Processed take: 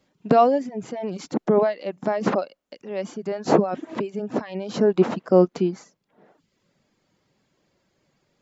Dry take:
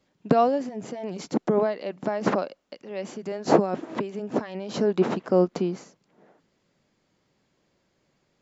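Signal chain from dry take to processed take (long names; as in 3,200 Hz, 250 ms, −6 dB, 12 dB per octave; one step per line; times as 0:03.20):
harmonic and percussive parts rebalanced harmonic +5 dB
reverb reduction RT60 0.62 s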